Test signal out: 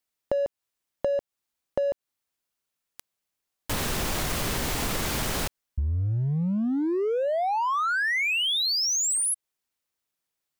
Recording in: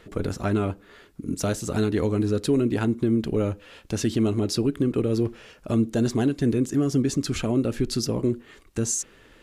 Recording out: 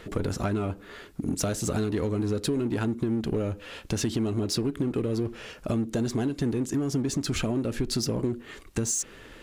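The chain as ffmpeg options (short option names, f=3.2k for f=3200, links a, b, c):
-filter_complex "[0:a]asplit=2[a][b];[b]volume=29.5dB,asoftclip=hard,volume=-29.5dB,volume=-4.5dB[c];[a][c]amix=inputs=2:normalize=0,acompressor=threshold=-26dB:ratio=6,volume=1.5dB"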